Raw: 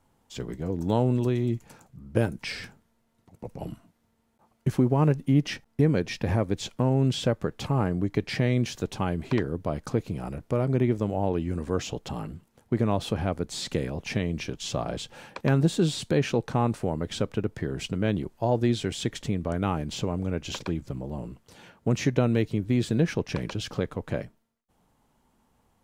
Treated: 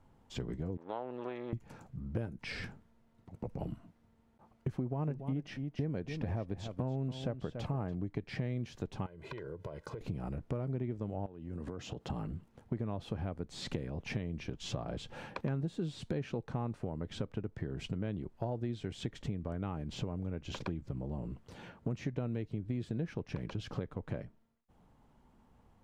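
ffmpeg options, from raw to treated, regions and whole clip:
ffmpeg -i in.wav -filter_complex "[0:a]asettb=1/sr,asplit=3[link_01][link_02][link_03];[link_01]atrim=end=0.774[link_04];[link_02]atrim=start=0.77:end=1.53,asetpts=PTS-STARTPTS,afade=type=in:duration=0.004:curve=qsin,afade=type=out:start_time=0.756:duration=0.004:curve=qsin,aeval=exprs='if(lt(val(0),0),0.251*val(0),val(0))':channel_layout=same,highpass=610,lowpass=2700[link_05];[link_03]atrim=start=1.526[link_06];[link_04][link_05]acrossfade=duration=0.004:curve1=hsin:curve2=qsin[link_07];[link_07][link_06]acrossfade=duration=0.004:curve1=qsin:curve2=hsin,asettb=1/sr,asplit=3[link_08][link_09][link_10];[link_08]atrim=end=4.754[link_11];[link_09]atrim=start=4.75:end=7.95,asetpts=PTS-STARTPTS,afade=type=in:duration=0.004:curve=qsin,afade=type=out:start_time=3.196:duration=0.004:curve=qsin,equalizer=frequency=680:width_type=o:width=0.37:gain=5,aecho=1:1:285:0.237,atrim=end_sample=141120[link_12];[link_10]atrim=start=7.946[link_13];[link_11][link_12]acrossfade=duration=0.004:curve1=hsin:curve2=qsin[link_14];[link_14][link_13]acrossfade=duration=0.004:curve1=qsin:curve2=hsin,asettb=1/sr,asplit=3[link_15][link_16][link_17];[link_15]atrim=end=9.064[link_18];[link_16]atrim=start=9.06:end=10.01,asetpts=PTS-STARTPTS,afade=type=in:duration=0.004:curve=qsin,afade=type=out:start_time=0.946:duration=0.004:curve=qsin,highpass=frequency=300:poles=1,acompressor=threshold=-40dB:ratio=12:attack=3.2:release=140:knee=1:detection=peak,aecho=1:1:2:0.72,atrim=end_sample=41895[link_19];[link_17]atrim=start=10.006[link_20];[link_18][link_19]acrossfade=duration=0.004:curve1=hsin:curve2=qsin[link_21];[link_21][link_20]acrossfade=duration=0.004:curve1=qsin:curve2=hsin,asettb=1/sr,asplit=3[link_22][link_23][link_24];[link_22]atrim=end=11.264[link_25];[link_23]atrim=start=11.26:end=12.1,asetpts=PTS-STARTPTS,afade=type=in:duration=0.004:curve=qsin,afade=type=out:start_time=0.836:duration=0.004:curve=qsin,highpass=82,bandreject=frequency=2300:width=14,acompressor=threshold=-37dB:ratio=10:attack=3.2:release=140:knee=1:detection=peak[link_26];[link_24]atrim=start=12.096[link_27];[link_25][link_26]acrossfade=duration=0.004:curve1=hsin:curve2=qsin[link_28];[link_28][link_27]acrossfade=duration=0.004:curve1=qsin:curve2=hsin,lowpass=frequency=2500:poles=1,lowshelf=frequency=190:gain=5.5,acompressor=threshold=-36dB:ratio=4" out.wav

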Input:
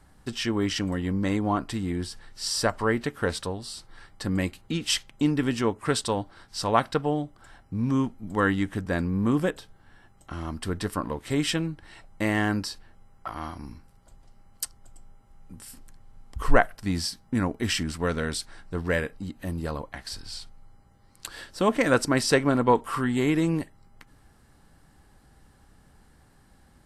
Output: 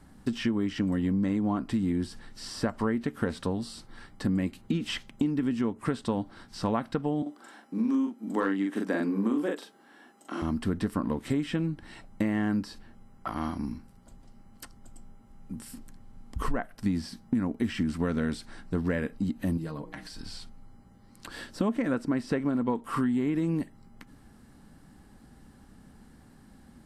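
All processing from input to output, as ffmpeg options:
ffmpeg -i in.wav -filter_complex "[0:a]asettb=1/sr,asplit=3[link_01][link_02][link_03];[link_01]atrim=end=7.224[link_04];[link_02]atrim=start=7.22:end=10.42,asetpts=PTS-STARTPTS,afade=type=in:duration=0.004:curve=qsin,afade=type=out:start_time=3.196:duration=0.004:curve=qsin,highpass=frequency=270:width=0.5412,highpass=frequency=270:width=1.3066,asoftclip=type=hard:threshold=-13.5dB,asplit=2[link_05][link_06];[link_06]adelay=41,volume=-2.5dB[link_07];[link_05][link_07]amix=inputs=2:normalize=0,atrim=end_sample=141120[link_08];[link_03]atrim=start=10.416[link_09];[link_04][link_08]acrossfade=duration=0.004:curve1=hsin:curve2=qsin[link_10];[link_10][link_09]acrossfade=duration=0.004:curve1=qsin:curve2=hsin,asettb=1/sr,asplit=3[link_11][link_12][link_13];[link_11]atrim=end=19.574[link_14];[link_12]atrim=start=19.57:end=20.21,asetpts=PTS-STARTPTS,afade=type=in:duration=0.004:curve=qsin,afade=type=out:start_time=0.636:duration=0.004:curve=qsin,bandreject=frequency=60:width_type=h:width=6,bandreject=frequency=120:width_type=h:width=6,bandreject=frequency=180:width_type=h:width=6,bandreject=frequency=240:width_type=h:width=6,bandreject=frequency=300:width_type=h:width=6,bandreject=frequency=360:width_type=h:width=6,bandreject=frequency=420:width_type=h:width=6,bandreject=frequency=480:width_type=h:width=6,acompressor=threshold=-40dB:ratio=3:attack=3.2:release=140:knee=1:detection=peak,aecho=1:1:6.4:0.63,atrim=end_sample=28224[link_15];[link_13]atrim=start=20.206[link_16];[link_14][link_15]acrossfade=duration=0.004:curve1=hsin:curve2=qsin[link_17];[link_17][link_16]acrossfade=duration=0.004:curve1=qsin:curve2=hsin,acrossover=split=2700[link_18][link_19];[link_19]acompressor=threshold=-42dB:ratio=4:attack=1:release=60[link_20];[link_18][link_20]amix=inputs=2:normalize=0,equalizer=frequency=230:width_type=o:width=0.94:gain=11,acompressor=threshold=-24dB:ratio=10" out.wav

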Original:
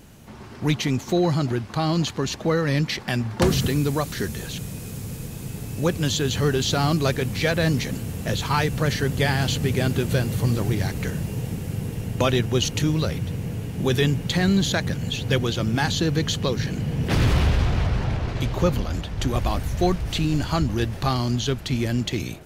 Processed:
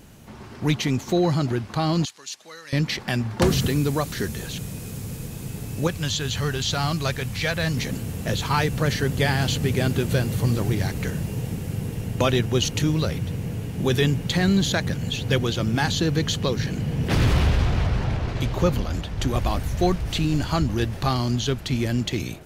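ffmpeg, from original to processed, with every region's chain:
ffmpeg -i in.wav -filter_complex "[0:a]asettb=1/sr,asplit=3[link_01][link_02][link_03];[link_01]atrim=end=2.054[link_04];[link_02]atrim=start=2.05:end=2.73,asetpts=PTS-STARTPTS,afade=type=in:duration=0.004:curve=qsin,afade=type=out:start_time=0.676:duration=0.004:curve=qsin,lowpass=9300,aderivative[link_05];[link_03]atrim=start=2.726[link_06];[link_04][link_05]acrossfade=duration=0.004:curve1=hsin:curve2=qsin[link_07];[link_07][link_06]acrossfade=duration=0.004:curve1=qsin:curve2=hsin,asettb=1/sr,asplit=3[link_08][link_09][link_10];[link_08]atrim=end=5.874[link_11];[link_09]atrim=start=5.87:end=7.77,asetpts=PTS-STARTPTS,afade=type=in:duration=0.004:curve=qsin,afade=type=out:start_time=1.896:duration=0.004:curve=qsin,acrossover=split=7900[link_12][link_13];[link_13]acompressor=threshold=-43dB:ratio=4:attack=1:release=60[link_14];[link_12][link_14]amix=inputs=2:normalize=0,equalizer=frequency=330:width_type=o:width=1.7:gain=-9[link_15];[link_10]atrim=start=7.766[link_16];[link_11][link_15]acrossfade=duration=0.004:curve1=hsin:curve2=qsin[link_17];[link_17][link_16]acrossfade=duration=0.004:curve1=qsin:curve2=hsin" out.wav

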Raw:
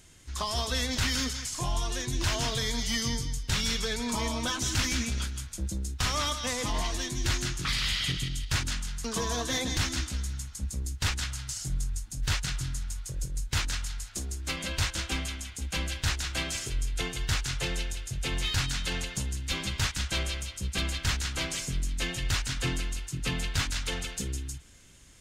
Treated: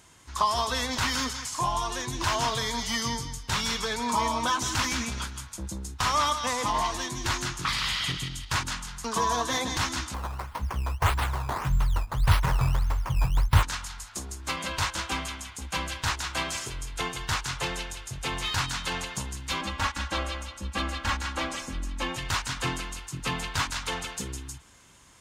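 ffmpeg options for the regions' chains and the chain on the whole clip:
ffmpeg -i in.wav -filter_complex "[0:a]asettb=1/sr,asplit=3[link_01][link_02][link_03];[link_01]atrim=end=10.144[link_04];[link_02]atrim=start=10.14:end=13.63,asetpts=PTS-STARTPTS,afade=type=in:duration=0.004:curve=qsin,afade=type=out:start_time=3.486:duration=0.004:curve=qsin,asubboost=boost=10:cutoff=140,acrusher=samples=12:mix=1:aa=0.000001:lfo=1:lforange=12:lforate=1.7[link_05];[link_03]atrim=start=13.626[link_06];[link_04][link_05]acrossfade=duration=0.004:curve1=hsin:curve2=qsin[link_07];[link_07][link_06]acrossfade=duration=0.004:curve1=qsin:curve2=hsin,asettb=1/sr,asplit=3[link_08][link_09][link_10];[link_08]atrim=end=19.614[link_11];[link_09]atrim=start=19.61:end=22.16,asetpts=PTS-STARTPTS,afade=type=in:duration=0.004:curve=qsin,afade=type=out:start_time=2.546:duration=0.004:curve=qsin,highshelf=frequency=3600:gain=-10.5,aecho=1:1:3.6:0.87,atrim=end_sample=112455[link_12];[link_10]atrim=start=22.156[link_13];[link_11][link_12]acrossfade=duration=0.004:curve1=hsin:curve2=qsin[link_14];[link_14][link_13]acrossfade=duration=0.004:curve1=qsin:curve2=hsin,highpass=frequency=91:poles=1,equalizer=frequency=1000:width_type=o:width=0.88:gain=12" out.wav

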